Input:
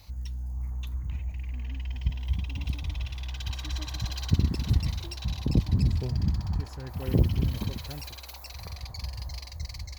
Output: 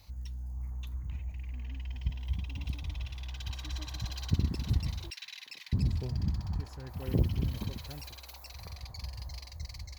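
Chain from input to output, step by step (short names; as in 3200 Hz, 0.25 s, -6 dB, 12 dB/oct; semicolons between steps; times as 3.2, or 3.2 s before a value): 5.1–5.73 resonant high-pass 2000 Hz, resonance Q 3; gain -5 dB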